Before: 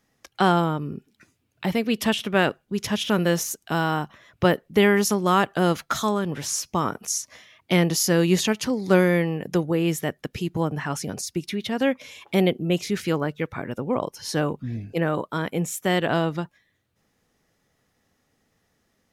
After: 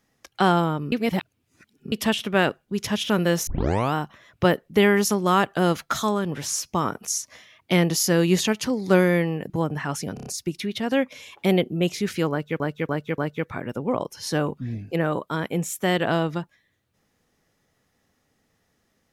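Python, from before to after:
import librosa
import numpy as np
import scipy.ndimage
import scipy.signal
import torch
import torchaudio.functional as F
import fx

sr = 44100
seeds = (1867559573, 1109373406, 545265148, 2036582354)

y = fx.edit(x, sr, fx.reverse_span(start_s=0.92, length_s=1.0),
    fx.tape_start(start_s=3.47, length_s=0.47),
    fx.cut(start_s=9.5, length_s=1.01),
    fx.stutter(start_s=11.15, slice_s=0.03, count=5),
    fx.repeat(start_s=13.2, length_s=0.29, count=4), tone=tone)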